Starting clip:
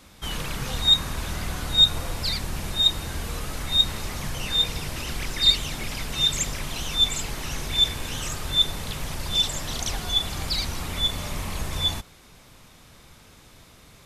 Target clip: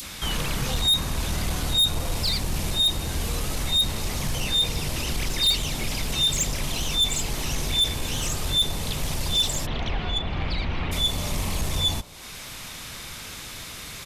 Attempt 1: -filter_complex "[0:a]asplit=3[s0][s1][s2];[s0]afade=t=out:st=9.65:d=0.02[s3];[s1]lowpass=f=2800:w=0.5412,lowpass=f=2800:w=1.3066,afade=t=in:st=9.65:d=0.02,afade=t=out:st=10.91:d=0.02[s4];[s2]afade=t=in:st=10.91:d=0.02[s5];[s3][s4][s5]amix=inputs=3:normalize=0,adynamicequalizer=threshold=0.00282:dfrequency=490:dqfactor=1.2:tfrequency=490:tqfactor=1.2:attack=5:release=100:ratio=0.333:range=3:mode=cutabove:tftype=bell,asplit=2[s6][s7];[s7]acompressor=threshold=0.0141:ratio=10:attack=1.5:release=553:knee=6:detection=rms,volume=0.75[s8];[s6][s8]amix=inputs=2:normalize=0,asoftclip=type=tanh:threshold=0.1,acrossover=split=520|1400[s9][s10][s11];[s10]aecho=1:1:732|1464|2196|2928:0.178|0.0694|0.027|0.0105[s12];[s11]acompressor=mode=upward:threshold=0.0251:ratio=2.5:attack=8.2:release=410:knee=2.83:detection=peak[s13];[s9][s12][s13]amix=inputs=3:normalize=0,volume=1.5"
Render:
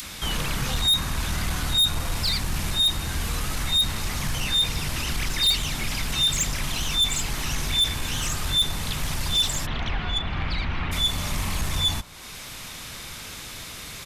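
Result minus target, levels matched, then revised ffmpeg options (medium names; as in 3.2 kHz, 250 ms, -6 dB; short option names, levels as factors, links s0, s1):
500 Hz band -4.0 dB
-filter_complex "[0:a]asplit=3[s0][s1][s2];[s0]afade=t=out:st=9.65:d=0.02[s3];[s1]lowpass=f=2800:w=0.5412,lowpass=f=2800:w=1.3066,afade=t=in:st=9.65:d=0.02,afade=t=out:st=10.91:d=0.02[s4];[s2]afade=t=in:st=10.91:d=0.02[s5];[s3][s4][s5]amix=inputs=3:normalize=0,adynamicequalizer=threshold=0.00282:dfrequency=1500:dqfactor=1.2:tfrequency=1500:tqfactor=1.2:attack=5:release=100:ratio=0.333:range=3:mode=cutabove:tftype=bell,asplit=2[s6][s7];[s7]acompressor=threshold=0.0141:ratio=10:attack=1.5:release=553:knee=6:detection=rms,volume=0.75[s8];[s6][s8]amix=inputs=2:normalize=0,asoftclip=type=tanh:threshold=0.1,acrossover=split=520|1400[s9][s10][s11];[s10]aecho=1:1:732|1464|2196|2928:0.178|0.0694|0.027|0.0105[s12];[s11]acompressor=mode=upward:threshold=0.0251:ratio=2.5:attack=8.2:release=410:knee=2.83:detection=peak[s13];[s9][s12][s13]amix=inputs=3:normalize=0,volume=1.5"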